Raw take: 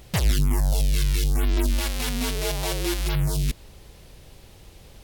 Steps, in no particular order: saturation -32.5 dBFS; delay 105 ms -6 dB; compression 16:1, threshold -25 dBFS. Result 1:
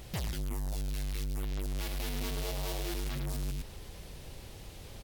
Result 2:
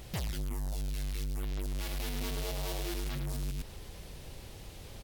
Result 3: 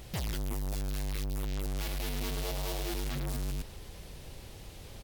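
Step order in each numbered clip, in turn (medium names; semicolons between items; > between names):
compression > delay > saturation; delay > compression > saturation; delay > saturation > compression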